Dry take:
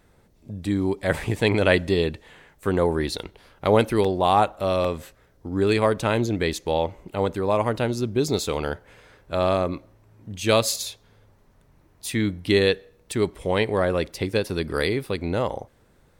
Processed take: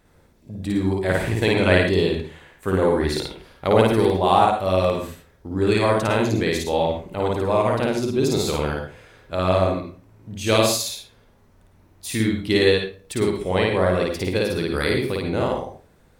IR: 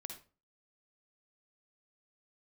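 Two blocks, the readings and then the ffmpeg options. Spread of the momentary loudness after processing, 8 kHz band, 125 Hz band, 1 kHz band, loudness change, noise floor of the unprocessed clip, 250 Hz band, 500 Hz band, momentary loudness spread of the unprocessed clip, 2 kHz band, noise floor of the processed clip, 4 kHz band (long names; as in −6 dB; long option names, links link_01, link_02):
14 LU, +2.5 dB, +3.0 dB, +3.0 dB, +2.5 dB, −59 dBFS, +3.0 dB, +2.5 dB, 12 LU, +2.5 dB, −56 dBFS, +2.5 dB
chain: -filter_complex "[0:a]asplit=2[link_01][link_02];[1:a]atrim=start_sample=2205,adelay=54[link_03];[link_02][link_03]afir=irnorm=-1:irlink=0,volume=5dB[link_04];[link_01][link_04]amix=inputs=2:normalize=0,volume=-1dB"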